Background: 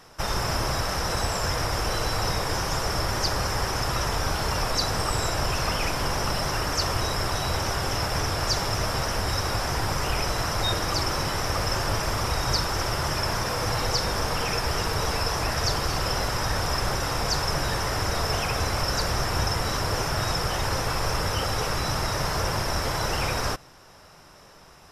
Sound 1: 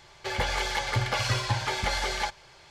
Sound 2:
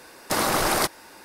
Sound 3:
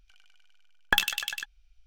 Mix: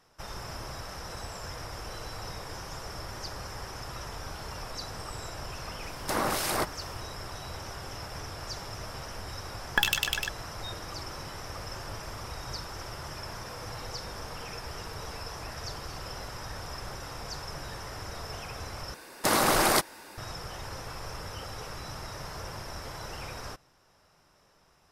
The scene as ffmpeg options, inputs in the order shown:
-filter_complex "[2:a]asplit=2[a][b];[0:a]volume=-13.5dB[c];[a]acrossover=split=2100[d][e];[d]aeval=exprs='val(0)*(1-0.7/2+0.7/2*cos(2*PI*2.3*n/s))':c=same[f];[e]aeval=exprs='val(0)*(1-0.7/2-0.7/2*cos(2*PI*2.3*n/s))':c=same[g];[f][g]amix=inputs=2:normalize=0[h];[3:a]alimiter=level_in=9.5dB:limit=-1dB:release=50:level=0:latency=1[i];[c]asplit=2[j][k];[j]atrim=end=18.944[l];[b]atrim=end=1.24,asetpts=PTS-STARTPTS,volume=-1dB[m];[k]atrim=start=20.176[n];[h]atrim=end=1.24,asetpts=PTS-STARTPTS,volume=-3.5dB,afade=t=in:d=0.004:c=hsin,afade=t=out:st=1.236:d=0.004:c=hsin,adelay=5780[o];[i]atrim=end=1.86,asetpts=PTS-STARTPTS,volume=-7dB,afade=t=in:d=0.004:c=hsin,afade=t=out:st=1.856:d=0.004:c=hsin,adelay=8850[p];[l][m]acrossfade=d=0.004:c1=hsin:c2=hsin[q];[q][n]acrossfade=d=0.004:c1=hsin:c2=hsin[r];[r][o][p]amix=inputs=3:normalize=0"

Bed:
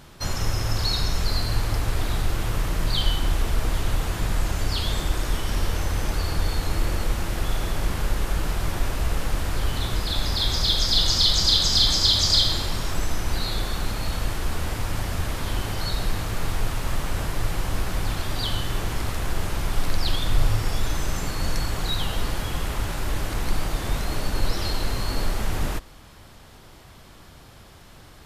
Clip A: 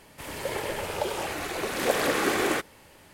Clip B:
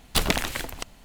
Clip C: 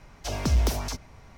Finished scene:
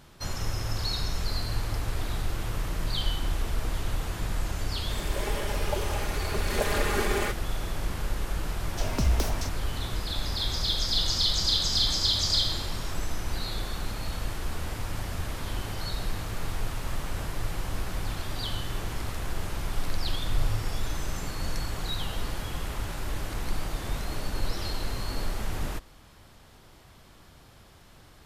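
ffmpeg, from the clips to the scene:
-filter_complex "[0:a]volume=-6dB[a];[1:a]aecho=1:1:4.9:0.89,atrim=end=3.13,asetpts=PTS-STARTPTS,volume=-6dB,afade=t=in:d=0.004:c=hsin,afade=t=out:st=3.126:d=0.004:c=hsin,adelay=4710[b];[3:a]atrim=end=1.37,asetpts=PTS-STARTPTS,volume=-2.5dB,afade=t=in:d=0.004:c=hsin,afade=t=out:st=1.366:d=0.004:c=hsin,adelay=8530[c];[a][b][c]amix=inputs=3:normalize=0"

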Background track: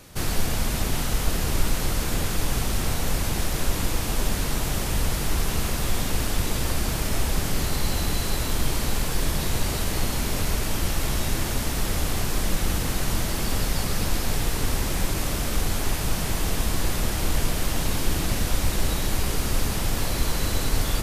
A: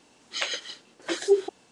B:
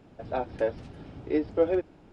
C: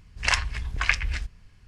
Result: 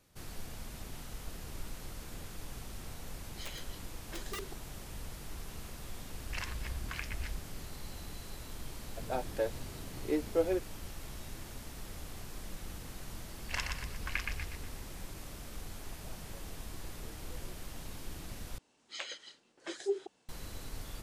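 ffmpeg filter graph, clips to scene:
-filter_complex "[1:a]asplit=2[a][b];[3:a]asplit=2[c][d];[2:a]asplit=2[e][f];[0:a]volume=-20dB[g];[a]aeval=exprs='(mod(8.91*val(0)+1,2)-1)/8.91':c=same[h];[c]acompressor=threshold=-30dB:ratio=6:attack=3.2:release=140:knee=1:detection=peak[i];[e]aemphasis=mode=production:type=50fm[j];[d]aecho=1:1:121|242|363|484|605:0.596|0.232|0.0906|0.0353|0.0138[k];[f]acompressor=threshold=-40dB:ratio=6:attack=3.2:release=140:knee=1:detection=peak[l];[g]asplit=2[m][n];[m]atrim=end=18.584[o];[b]atrim=end=1.71,asetpts=PTS-STARTPTS,volume=-12.5dB[p];[n]atrim=start=20.286[q];[h]atrim=end=1.71,asetpts=PTS-STARTPTS,volume=-16dB,afade=t=in:d=0.004:c=hsin,afade=t=out:st=1.706:d=0.004:c=hsin,adelay=3040[r];[i]atrim=end=1.67,asetpts=PTS-STARTPTS,volume=-6dB,afade=t=in:d=0.004:c=hsin,afade=t=out:st=1.666:d=0.004:c=hsin,adelay=269010S[s];[j]atrim=end=2.12,asetpts=PTS-STARTPTS,volume=-5.5dB,afade=t=in:d=0.004:c=hsin,afade=t=out:st=2.116:d=0.004:c=hsin,adelay=8780[t];[k]atrim=end=1.67,asetpts=PTS-STARTPTS,volume=-14.5dB,afade=t=in:d=0.004:c=hsin,afade=t=out:st=1.666:d=0.004:c=hsin,adelay=13260[u];[l]atrim=end=2.12,asetpts=PTS-STARTPTS,volume=-14.5dB,afade=t=in:d=0.004:c=hsin,afade=t=out:st=2.116:d=0.004:c=hsin,adelay=15730[v];[o][p]acrossfade=d=0.004:c1=hsin:c2=hsin[w];[w][q]acrossfade=d=0.004:c1=hsin:c2=hsin[x];[x][r][s][t][u][v]amix=inputs=6:normalize=0"

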